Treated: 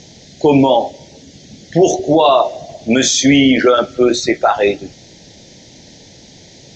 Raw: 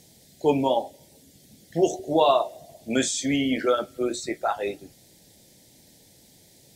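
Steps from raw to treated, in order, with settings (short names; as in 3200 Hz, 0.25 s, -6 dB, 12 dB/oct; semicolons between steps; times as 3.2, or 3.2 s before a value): elliptic low-pass 6500 Hz, stop band 40 dB; maximiser +17.5 dB; gain -1 dB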